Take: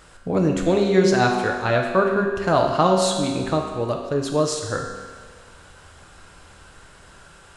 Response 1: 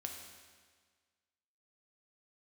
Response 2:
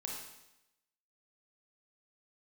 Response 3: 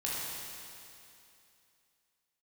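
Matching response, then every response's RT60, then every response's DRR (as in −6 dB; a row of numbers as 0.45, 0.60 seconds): 1; 1.6, 0.90, 2.7 seconds; 1.5, −2.0, −7.0 decibels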